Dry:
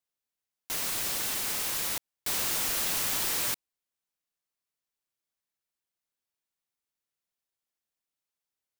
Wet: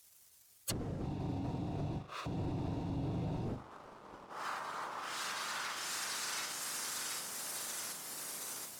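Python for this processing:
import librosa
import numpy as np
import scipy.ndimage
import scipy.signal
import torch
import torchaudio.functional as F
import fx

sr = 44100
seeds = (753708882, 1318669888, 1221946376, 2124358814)

y = fx.bin_compress(x, sr, power=0.6)
y = scipy.signal.sosfilt(scipy.signal.butter(2, 160.0, 'highpass', fs=sr, output='sos'), y)
y = fx.echo_wet_highpass(y, sr, ms=729, feedback_pct=66, hz=2600.0, wet_db=-4)
y = fx.dynamic_eq(y, sr, hz=1900.0, q=0.86, threshold_db=-47.0, ratio=4.0, max_db=6)
y = fx.fixed_phaser(y, sr, hz=840.0, stages=6, at=(1.02, 3.46))
y = fx.spec_gate(y, sr, threshold_db=-15, keep='weak')
y = fx.bass_treble(y, sr, bass_db=1, treble_db=13)
y = fx.room_flutter(y, sr, wall_m=6.9, rt60_s=0.34)
y = np.clip(10.0 ** (30.5 / 20.0) * y, -1.0, 1.0) / 10.0 ** (30.5 / 20.0)
y = fx.env_lowpass_down(y, sr, base_hz=380.0, full_db=-36.0)
y = fx.leveller(y, sr, passes=2)
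y = y * librosa.db_to_amplitude(13.0)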